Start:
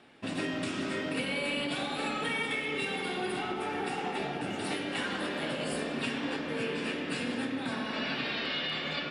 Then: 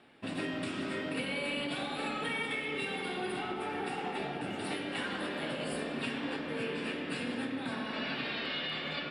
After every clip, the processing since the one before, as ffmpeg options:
-af "equalizer=f=6300:t=o:w=0.48:g=-8.5,volume=0.75"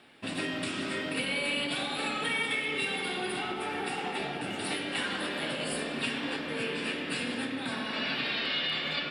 -af "highshelf=f=2100:g=8,volume=1.12"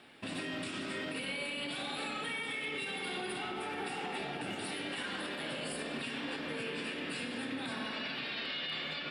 -af "alimiter=level_in=1.88:limit=0.0631:level=0:latency=1:release=123,volume=0.531"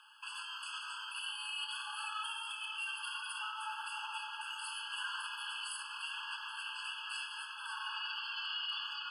-af "afftfilt=real='re*eq(mod(floor(b*sr/1024/860),2),1)':imag='im*eq(mod(floor(b*sr/1024/860),2),1)':win_size=1024:overlap=0.75,volume=1.26"

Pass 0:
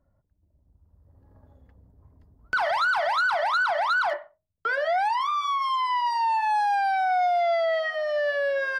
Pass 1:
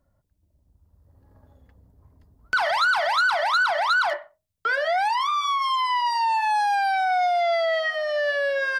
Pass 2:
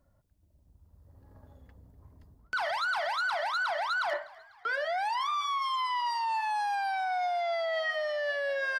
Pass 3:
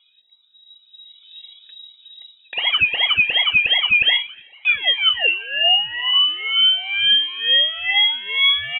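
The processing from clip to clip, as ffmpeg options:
-af "highshelf=f=2000:g=8"
-filter_complex "[0:a]areverse,acompressor=threshold=0.0355:ratio=6,areverse,asplit=5[s0][s1][s2][s3][s4];[s1]adelay=248,afreqshift=66,volume=0.0794[s5];[s2]adelay=496,afreqshift=132,volume=0.0407[s6];[s3]adelay=744,afreqshift=198,volume=0.0207[s7];[s4]adelay=992,afreqshift=264,volume=0.0106[s8];[s0][s5][s6][s7][s8]amix=inputs=5:normalize=0"
-af "afftfilt=real='re*pow(10,22/40*sin(2*PI*(1.3*log(max(b,1)*sr/1024/100)/log(2)-(-2.6)*(pts-256)/sr)))':imag='im*pow(10,22/40*sin(2*PI*(1.3*log(max(b,1)*sr/1024/100)/log(2)-(-2.6)*(pts-256)/sr)))':win_size=1024:overlap=0.75,lowpass=f=3300:t=q:w=0.5098,lowpass=f=3300:t=q:w=0.6013,lowpass=f=3300:t=q:w=0.9,lowpass=f=3300:t=q:w=2.563,afreqshift=-3900,volume=2.37"

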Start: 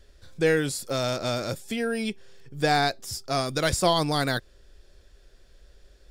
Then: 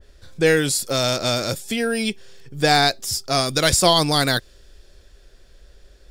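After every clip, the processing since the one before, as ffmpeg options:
-af "adynamicequalizer=threshold=0.0112:dfrequency=2400:dqfactor=0.7:tfrequency=2400:tqfactor=0.7:attack=5:release=100:ratio=0.375:range=3:mode=boostabove:tftype=highshelf,volume=1.78"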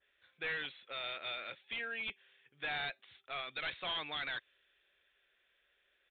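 -af "bandpass=f=2300:t=q:w=1.7:csg=0,aresample=8000,volume=21.1,asoftclip=hard,volume=0.0473,aresample=44100,volume=0.398"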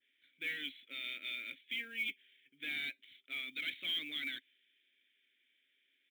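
-filter_complex "[0:a]asplit=3[s0][s1][s2];[s0]bandpass=f=270:t=q:w=8,volume=1[s3];[s1]bandpass=f=2290:t=q:w=8,volume=0.501[s4];[s2]bandpass=f=3010:t=q:w=8,volume=0.355[s5];[s3][s4][s5]amix=inputs=3:normalize=0,acrusher=bits=8:mode=log:mix=0:aa=0.000001,crystalizer=i=2:c=0,volume=2.82"

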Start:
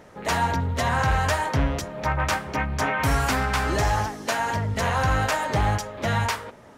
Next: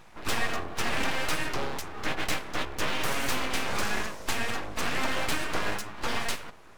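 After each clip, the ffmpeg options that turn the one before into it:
-af "highpass=f=150:w=0.5412,highpass=f=150:w=1.3066,aeval=exprs='abs(val(0))':c=same,volume=0.841"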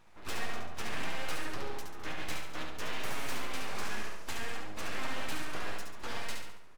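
-filter_complex "[0:a]flanger=delay=9.5:depth=4.2:regen=65:speed=0.63:shape=sinusoidal,asplit=2[s0][s1];[s1]aecho=0:1:70|140|210|280|350|420:0.596|0.274|0.126|0.058|0.0267|0.0123[s2];[s0][s2]amix=inputs=2:normalize=0,volume=0.501"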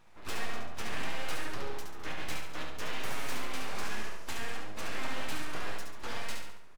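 -filter_complex "[0:a]asplit=2[s0][s1];[s1]adelay=27,volume=0.251[s2];[s0][s2]amix=inputs=2:normalize=0"

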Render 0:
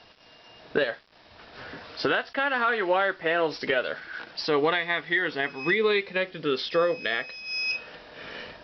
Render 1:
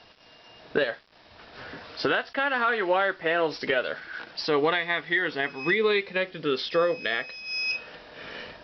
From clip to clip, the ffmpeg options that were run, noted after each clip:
-af anull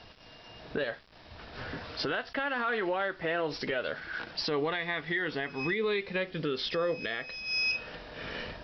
-af "lowshelf=f=150:g=12,alimiter=limit=0.0794:level=0:latency=1:release=151"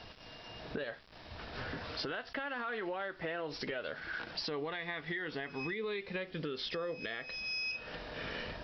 -af "acompressor=threshold=0.0112:ratio=3,volume=1.12"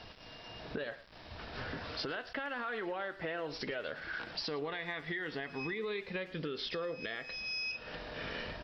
-filter_complex "[0:a]asplit=2[s0][s1];[s1]adelay=110,highpass=300,lowpass=3400,asoftclip=type=hard:threshold=0.02,volume=0.178[s2];[s0][s2]amix=inputs=2:normalize=0"

